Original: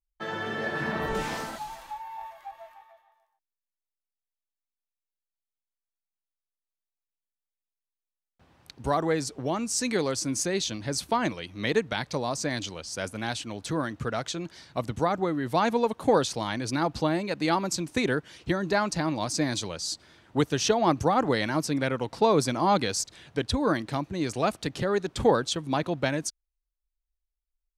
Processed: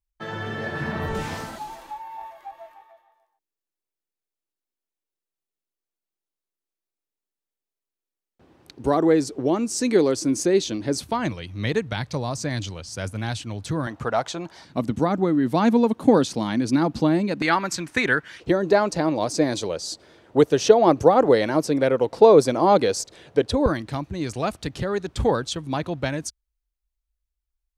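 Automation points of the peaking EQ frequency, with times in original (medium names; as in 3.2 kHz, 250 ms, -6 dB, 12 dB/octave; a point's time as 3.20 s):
peaking EQ +12 dB 1.3 oct
94 Hz
from 1.57 s 350 Hz
from 11.03 s 100 Hz
from 13.87 s 820 Hz
from 14.65 s 240 Hz
from 17.42 s 1.7 kHz
from 18.40 s 480 Hz
from 23.66 s 65 Hz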